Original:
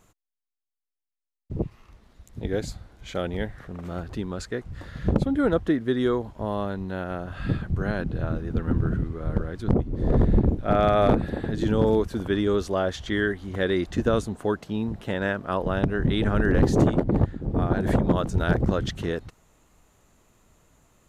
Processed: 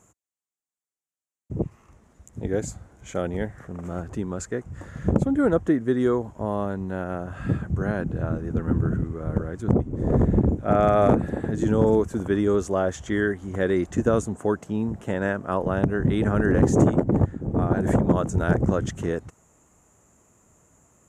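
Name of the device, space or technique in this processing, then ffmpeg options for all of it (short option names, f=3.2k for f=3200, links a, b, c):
budget condenser microphone: -af "highpass=68,aemphasis=mode=reproduction:type=75kf,highshelf=f=5.5k:t=q:w=3:g=10,volume=2dB"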